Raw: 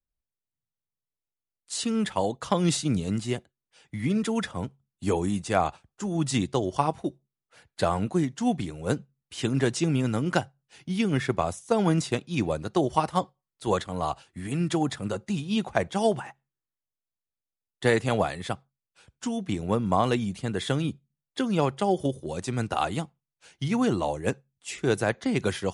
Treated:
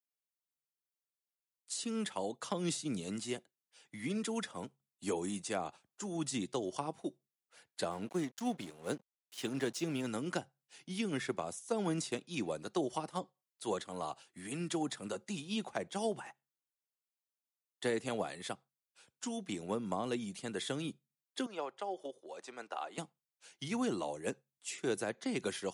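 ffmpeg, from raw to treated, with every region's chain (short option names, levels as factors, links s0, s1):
-filter_complex "[0:a]asettb=1/sr,asplit=3[s0][s1][s2];[s0]atrim=end=7.914[s3];[s1]atrim=start=7.91:end=10.07,asetpts=PTS-STARTPTS,afade=t=in:d=0.004:c=qsin,afade=t=out:st=2.156:d=0.004:c=qsin,equalizer=f=8200:w=3.2:g=-6.5,aeval=exprs='sgn(val(0))*max(abs(val(0))-0.00708,0)':c=same[s4];[s2]atrim=start=10.066[s5];[s3][s4]acrossfade=d=0.004:c1=hsin:c2=qsin[s6];[s6][s5]acrossfade=d=0.004:c1=qsin:c2=hsin,asettb=1/sr,asplit=3[s7][s8][s9];[s7]atrim=end=21.464[s10];[s8]atrim=start=21.46:end=22.98,asetpts=PTS-STARTPTS,afade=t=in:d=0.004:c=qsin,afade=t=out:st=1.516:d=0.004:c=qsin,highpass=570,lowpass=7700,highshelf=f=2400:g=-12[s11];[s9]atrim=start=22.976[s12];[s10][s11]acrossfade=d=0.004:c1=hsin:c2=qsin[s13];[s13][s12]acrossfade=d=0.004:c1=qsin:c2=hsin,highpass=230,highshelf=f=4100:g=7.5,acrossover=split=460[s14][s15];[s15]acompressor=threshold=0.0316:ratio=4[s16];[s14][s16]amix=inputs=2:normalize=0,volume=0.398"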